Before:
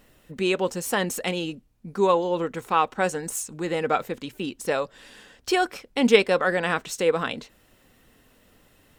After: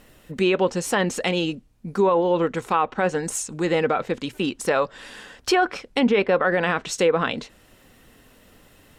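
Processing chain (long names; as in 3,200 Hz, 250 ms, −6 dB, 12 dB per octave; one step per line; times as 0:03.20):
treble cut that deepens with the level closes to 2,300 Hz, closed at −17.5 dBFS
0:04.34–0:05.75: parametric band 1,200 Hz +4 dB 1.6 octaves
brickwall limiter −16 dBFS, peak gain reduction 11.5 dB
level +5.5 dB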